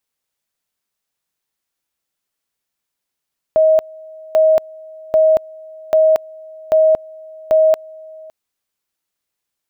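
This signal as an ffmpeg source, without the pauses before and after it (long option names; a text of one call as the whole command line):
ffmpeg -f lavfi -i "aevalsrc='pow(10,(-8-25*gte(mod(t,0.79),0.23))/20)*sin(2*PI*632*t)':duration=4.74:sample_rate=44100" out.wav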